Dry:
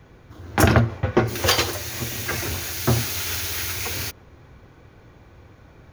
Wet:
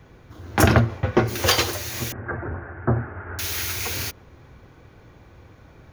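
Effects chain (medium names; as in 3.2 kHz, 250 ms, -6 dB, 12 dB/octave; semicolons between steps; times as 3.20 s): 2.12–3.39 s: elliptic low-pass 1.6 kHz, stop band 60 dB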